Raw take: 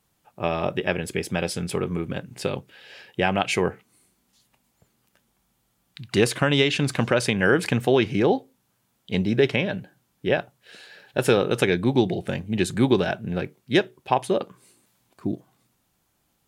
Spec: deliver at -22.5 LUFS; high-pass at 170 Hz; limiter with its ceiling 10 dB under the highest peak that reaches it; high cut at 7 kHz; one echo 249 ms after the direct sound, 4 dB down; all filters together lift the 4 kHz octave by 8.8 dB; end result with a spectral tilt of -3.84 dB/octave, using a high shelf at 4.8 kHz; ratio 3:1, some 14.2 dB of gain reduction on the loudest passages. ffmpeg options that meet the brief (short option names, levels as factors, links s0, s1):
-af "highpass=170,lowpass=7000,equalizer=f=4000:t=o:g=8.5,highshelf=f=4800:g=7,acompressor=threshold=0.0251:ratio=3,alimiter=limit=0.0708:level=0:latency=1,aecho=1:1:249:0.631,volume=4.47"